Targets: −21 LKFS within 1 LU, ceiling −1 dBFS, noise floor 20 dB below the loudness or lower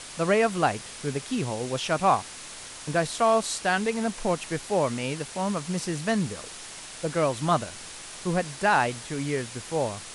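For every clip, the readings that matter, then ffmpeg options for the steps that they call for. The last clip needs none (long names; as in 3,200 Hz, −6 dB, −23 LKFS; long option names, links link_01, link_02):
background noise floor −42 dBFS; target noise floor −47 dBFS; integrated loudness −27.0 LKFS; sample peak −10.0 dBFS; target loudness −21.0 LKFS
→ -af "afftdn=noise_reduction=6:noise_floor=-42"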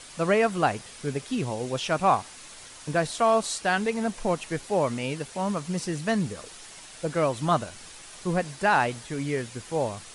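background noise floor −46 dBFS; target noise floor −47 dBFS
→ -af "afftdn=noise_reduction=6:noise_floor=-46"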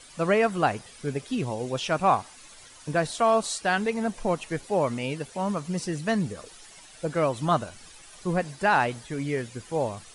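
background noise floor −49 dBFS; integrated loudness −27.0 LKFS; sample peak −10.0 dBFS; target loudness −21.0 LKFS
→ -af "volume=6dB"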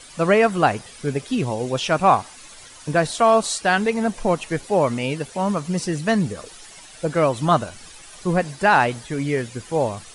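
integrated loudness −21.0 LKFS; sample peak −4.0 dBFS; background noise floor −43 dBFS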